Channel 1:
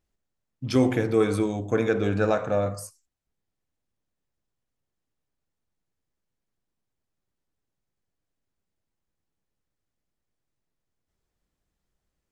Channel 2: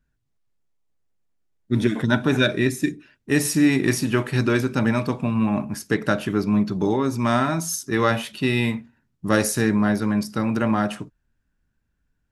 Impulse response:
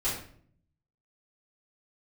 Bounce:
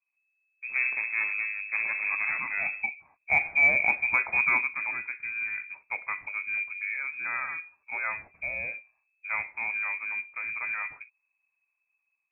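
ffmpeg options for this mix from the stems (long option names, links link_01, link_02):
-filter_complex "[0:a]lowpass=frequency=1500:poles=1,lowshelf=frequency=110:gain=8.5,aeval=exprs='max(val(0),0)':channel_layout=same,volume=-13dB[link_01];[1:a]volume=-11dB,afade=type=in:start_time=2.57:duration=0.67:silence=0.251189,afade=type=out:start_time=4.54:duration=0.25:silence=0.398107[link_02];[link_01][link_02]amix=inputs=2:normalize=0,lowpass=frequency=2200:width_type=q:width=0.5098,lowpass=frequency=2200:width_type=q:width=0.6013,lowpass=frequency=2200:width_type=q:width=0.9,lowpass=frequency=2200:width_type=q:width=2.563,afreqshift=-2600,acontrast=78,equalizer=frequency=88:width=2.3:gain=5.5"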